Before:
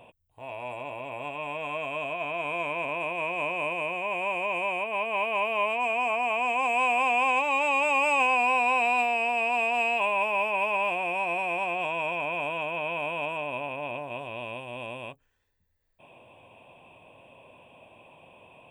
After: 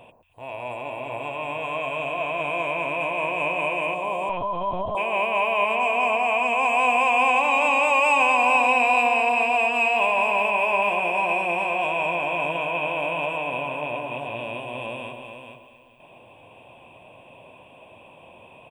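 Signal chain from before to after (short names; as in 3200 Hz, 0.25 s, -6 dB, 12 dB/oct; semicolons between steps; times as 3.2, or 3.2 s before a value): echo with dull and thin repeats by turns 0.114 s, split 1400 Hz, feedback 66%, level -7.5 dB; 3.94–4.97 spectral delete 1200–3100 Hz; feedback echo 0.432 s, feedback 19%, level -7.5 dB; 4.29–4.95 LPC vocoder at 8 kHz pitch kept; gain +3.5 dB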